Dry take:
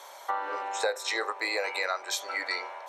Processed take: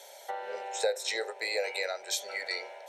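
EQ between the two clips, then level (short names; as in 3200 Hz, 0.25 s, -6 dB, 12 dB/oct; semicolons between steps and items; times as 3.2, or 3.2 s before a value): low shelf 320 Hz +4 dB; bell 9200 Hz +3 dB 0.34 oct; fixed phaser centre 300 Hz, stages 6; 0.0 dB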